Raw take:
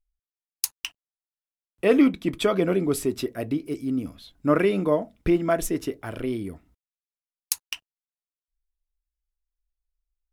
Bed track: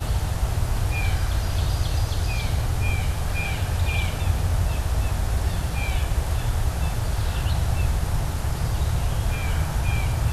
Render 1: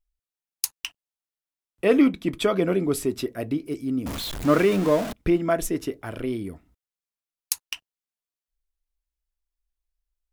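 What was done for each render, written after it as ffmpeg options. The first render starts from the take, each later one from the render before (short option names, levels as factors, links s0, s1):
-filter_complex "[0:a]asettb=1/sr,asplit=3[s0][s1][s2];[s0]atrim=end=4.064[s3];[s1]atrim=start=4.06:end=5.13,asetpts=PTS-STARTPTS,afade=t=in:d=0.004:c=qsin,afade=t=out:st=1.066:d=0.004:c=qsin,aeval=exprs='val(0)+0.5*0.0473*sgn(val(0))':c=same[s4];[s2]atrim=start=5.126[s5];[s3][s4]acrossfade=d=0.004:c1=hsin:c2=qsin[s6];[s6][s5]acrossfade=d=0.004:c1=qsin:c2=hsin"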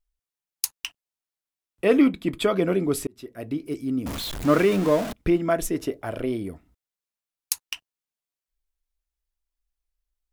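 -filter_complex "[0:a]asettb=1/sr,asplit=3[s0][s1][s2];[s0]atrim=end=1.974[s3];[s1]atrim=start=1.97:end=2.51,asetpts=PTS-STARTPTS,afade=t=in:d=0.004:c=qsin,afade=t=out:st=0.536:d=0.004:c=qsin,bandreject=f=5800:w=6[s4];[s2]atrim=start=2.506[s5];[s3][s4]acrossfade=d=0.004:c1=hsin:c2=qsin[s6];[s6][s5]acrossfade=d=0.004:c1=qsin:c2=hsin,asettb=1/sr,asplit=3[s7][s8][s9];[s7]atrim=end=5.784[s10];[s8]atrim=start=5.78:end=6.51,asetpts=PTS-STARTPTS,afade=t=in:d=0.004:c=qsin,afade=t=out:st=0.726:d=0.004:c=qsin,equalizer=f=620:t=o:w=0.75:g=7.5[s11];[s9]atrim=start=6.506[s12];[s10][s11]acrossfade=d=0.004:c1=hsin:c2=qsin[s13];[s13][s12]acrossfade=d=0.004:c1=qsin:c2=hsin,asplit=2[s14][s15];[s14]atrim=end=3.07,asetpts=PTS-STARTPTS,afade=t=out:st=3.066:d=0.004:c=hsin[s16];[s15]atrim=start=3.07,asetpts=PTS-STARTPTS,afade=t=in:d=0.62[s17];[s16][s17]concat=n=2:v=0:a=1"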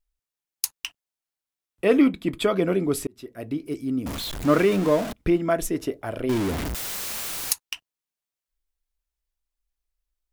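-filter_complex "[0:a]asettb=1/sr,asplit=3[s0][s1][s2];[s0]atrim=end=6.294[s3];[s1]atrim=start=6.29:end=7.53,asetpts=PTS-STARTPTS,afade=t=in:d=0.004:c=qsin,afade=t=out:st=1.236:d=0.004:c=qsin,aeval=exprs='val(0)+0.5*0.075*sgn(val(0))':c=same[s4];[s2]atrim=start=7.526[s5];[s3][s4]acrossfade=d=0.004:c1=hsin:c2=qsin[s6];[s6][s5]acrossfade=d=0.004:c1=qsin:c2=hsin"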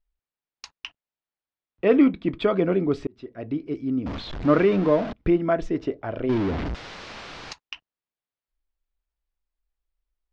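-af "lowpass=f=5300:w=0.5412,lowpass=f=5300:w=1.3066,aemphasis=mode=reproduction:type=75fm"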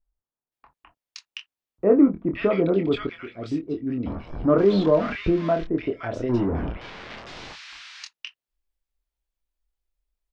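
-filter_complex "[0:a]asplit=2[s0][s1];[s1]adelay=25,volume=0.473[s2];[s0][s2]amix=inputs=2:normalize=0,acrossover=split=1400[s3][s4];[s4]adelay=520[s5];[s3][s5]amix=inputs=2:normalize=0"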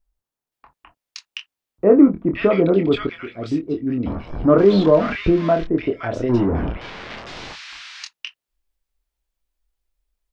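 -af "volume=1.78,alimiter=limit=0.794:level=0:latency=1"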